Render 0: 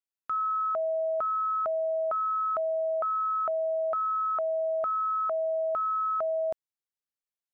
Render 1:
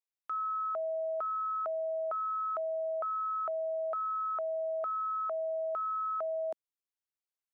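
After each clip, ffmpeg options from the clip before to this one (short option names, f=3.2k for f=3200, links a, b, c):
-af "highpass=f=300:w=0.5412,highpass=f=300:w=1.3066,volume=-5.5dB"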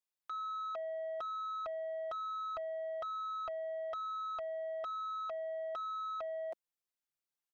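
-af "aecho=1:1:5.7:0.59,asoftclip=type=tanh:threshold=-34dB,volume=-2dB"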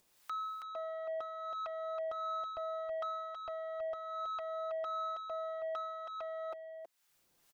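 -filter_complex "[0:a]acompressor=mode=upward:threshold=-47dB:ratio=2.5,acrossover=split=700[a][b];[a]aeval=exprs='val(0)*(1-0.7/2+0.7/2*cos(2*PI*1.5*n/s))':c=same[c];[b]aeval=exprs='val(0)*(1-0.7/2-0.7/2*cos(2*PI*1.5*n/s))':c=same[d];[c][d]amix=inputs=2:normalize=0,asplit=2[e][f];[f]aecho=0:1:323:0.501[g];[e][g]amix=inputs=2:normalize=0,volume=2.5dB"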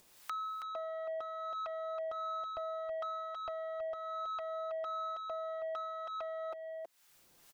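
-af "acompressor=threshold=-52dB:ratio=2,volume=8dB"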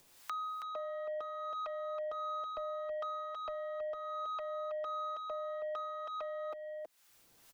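-af "afreqshift=-33"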